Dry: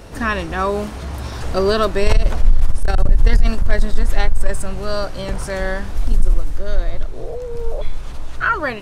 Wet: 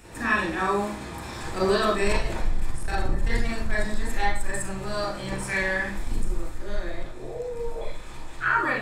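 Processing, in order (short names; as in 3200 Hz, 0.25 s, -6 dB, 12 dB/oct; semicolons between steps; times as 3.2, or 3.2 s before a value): 5.47–5.91 bell 2300 Hz +12 dB -> +4.5 dB 0.8 oct; reverb RT60 0.50 s, pre-delay 34 ms, DRR -4.5 dB; gain -6.5 dB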